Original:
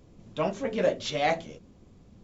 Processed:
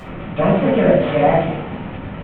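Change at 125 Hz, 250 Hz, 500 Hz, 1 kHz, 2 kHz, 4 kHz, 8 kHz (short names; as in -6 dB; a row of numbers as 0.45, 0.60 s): +19.0 dB, +17.5 dB, +13.0 dB, +11.5 dB, +9.0 dB, +2.0 dB, n/a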